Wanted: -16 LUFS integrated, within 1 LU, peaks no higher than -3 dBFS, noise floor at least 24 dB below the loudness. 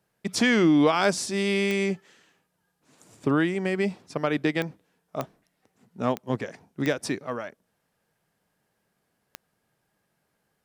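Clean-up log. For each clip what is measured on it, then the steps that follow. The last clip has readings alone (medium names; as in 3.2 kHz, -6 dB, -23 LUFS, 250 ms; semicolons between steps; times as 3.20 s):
clicks found 6; loudness -26.0 LUFS; peak level -8.5 dBFS; loudness target -16.0 LUFS
-> de-click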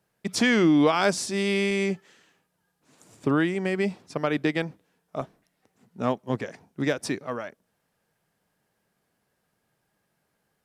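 clicks found 0; loudness -26.0 LUFS; peak level -8.5 dBFS; loudness target -16.0 LUFS
-> trim +10 dB; peak limiter -3 dBFS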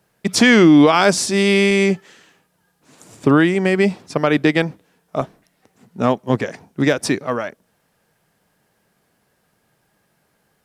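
loudness -16.5 LUFS; peak level -3.0 dBFS; noise floor -66 dBFS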